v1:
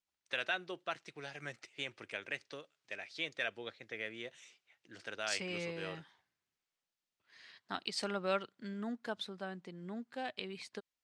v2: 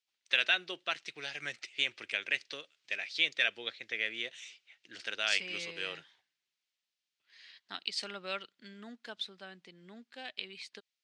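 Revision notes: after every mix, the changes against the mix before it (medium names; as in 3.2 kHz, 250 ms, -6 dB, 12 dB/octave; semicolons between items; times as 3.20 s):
second voice -7.0 dB; master: add frequency weighting D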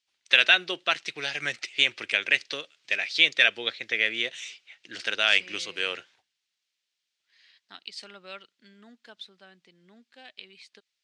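first voice +9.5 dB; second voice -4.0 dB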